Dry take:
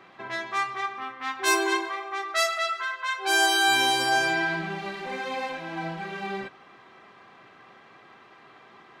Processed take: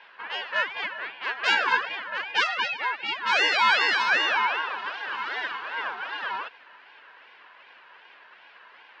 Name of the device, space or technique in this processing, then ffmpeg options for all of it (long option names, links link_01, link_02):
voice changer toy: -af "aeval=exprs='val(0)*sin(2*PI*910*n/s+910*0.4/2.6*sin(2*PI*2.6*n/s))':channel_layout=same,highpass=570,equalizer=frequency=1000:width_type=q:width=4:gain=9,equalizer=frequency=1600:width_type=q:width=4:gain=9,equalizer=frequency=2800:width_type=q:width=4:gain=5,lowpass=frequency=5000:width=0.5412,lowpass=frequency=5000:width=1.3066"